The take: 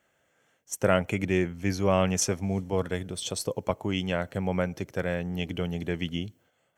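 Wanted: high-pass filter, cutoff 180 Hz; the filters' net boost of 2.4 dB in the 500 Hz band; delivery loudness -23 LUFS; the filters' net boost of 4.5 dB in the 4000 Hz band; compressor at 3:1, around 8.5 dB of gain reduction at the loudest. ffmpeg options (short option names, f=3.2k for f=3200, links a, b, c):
-af "highpass=180,equalizer=f=500:t=o:g=3,equalizer=f=4k:t=o:g=6.5,acompressor=threshold=-28dB:ratio=3,volume=9.5dB"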